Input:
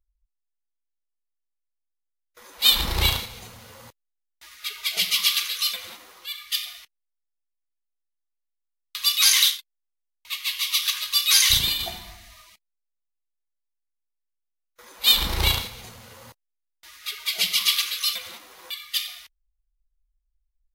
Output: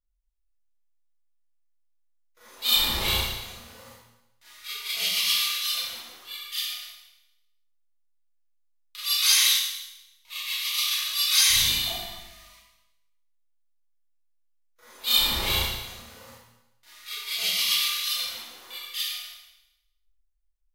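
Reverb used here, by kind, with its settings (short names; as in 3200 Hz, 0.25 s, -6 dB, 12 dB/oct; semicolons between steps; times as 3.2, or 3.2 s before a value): Schroeder reverb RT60 0.92 s, combs from 26 ms, DRR -10 dB; gain -12 dB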